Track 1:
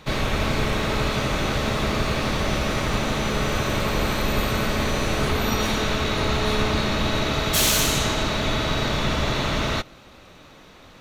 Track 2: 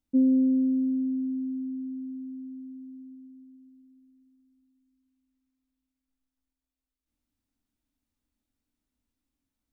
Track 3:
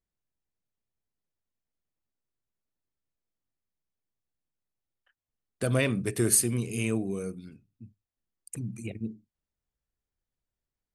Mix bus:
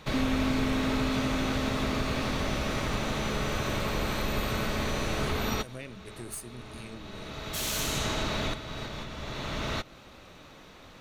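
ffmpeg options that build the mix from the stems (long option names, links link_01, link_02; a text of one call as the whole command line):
ffmpeg -i stem1.wav -i stem2.wav -i stem3.wav -filter_complex "[0:a]volume=-3dB[link_01];[1:a]acompressor=threshold=-26dB:ratio=6,volume=-2.5dB[link_02];[2:a]aeval=exprs='(tanh(5.01*val(0)+0.7)-tanh(0.7))/5.01':channel_layout=same,volume=-13dB,asplit=2[link_03][link_04];[link_04]apad=whole_len=485201[link_05];[link_01][link_05]sidechaincompress=threshold=-59dB:ratio=8:attack=12:release=741[link_06];[link_06][link_03]amix=inputs=2:normalize=0,acompressor=threshold=-33dB:ratio=1.5,volume=0dB[link_07];[link_02][link_07]amix=inputs=2:normalize=0" out.wav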